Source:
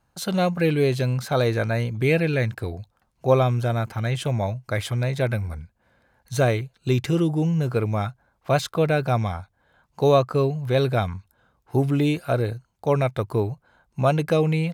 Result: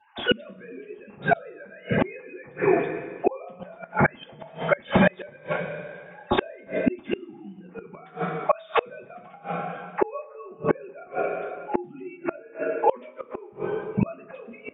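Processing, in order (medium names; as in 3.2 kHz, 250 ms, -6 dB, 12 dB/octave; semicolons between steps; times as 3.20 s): formants replaced by sine waves; in parallel at +2 dB: compression 10:1, threshold -29 dBFS, peak gain reduction 19.5 dB; on the sum: two-slope reverb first 0.2 s, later 1.7 s, from -18 dB, DRR -10 dB; inverted gate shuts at -7 dBFS, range -31 dB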